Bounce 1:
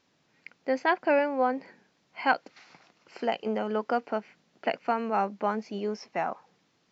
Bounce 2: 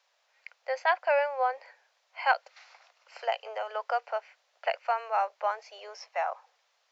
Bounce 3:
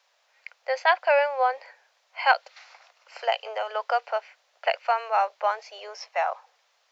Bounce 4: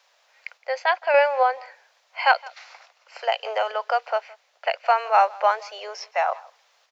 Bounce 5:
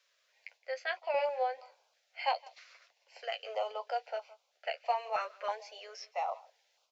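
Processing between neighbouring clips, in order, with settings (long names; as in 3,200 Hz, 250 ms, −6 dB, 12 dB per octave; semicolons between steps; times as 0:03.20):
Butterworth high-pass 540 Hz 48 dB per octave
dynamic equaliser 3,700 Hz, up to +5 dB, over −51 dBFS, Q 1.4; level +4.5 dB
sample-and-hold tremolo; single-tap delay 166 ms −23.5 dB; level +6 dB
flanger 0.34 Hz, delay 8.5 ms, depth 5.8 ms, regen −34%; notch on a step sequencer 3.1 Hz 830–1,800 Hz; level −6 dB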